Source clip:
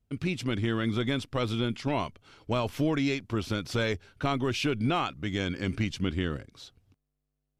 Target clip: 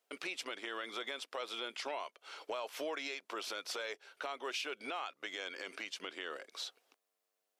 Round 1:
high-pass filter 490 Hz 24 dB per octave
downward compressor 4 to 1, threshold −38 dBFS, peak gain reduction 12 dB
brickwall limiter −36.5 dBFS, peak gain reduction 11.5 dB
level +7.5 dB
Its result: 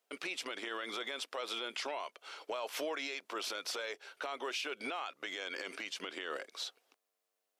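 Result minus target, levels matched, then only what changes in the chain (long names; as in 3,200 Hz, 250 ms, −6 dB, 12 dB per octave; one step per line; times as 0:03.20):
downward compressor: peak gain reduction −6 dB
change: downward compressor 4 to 1, threshold −46 dBFS, peak gain reduction 18 dB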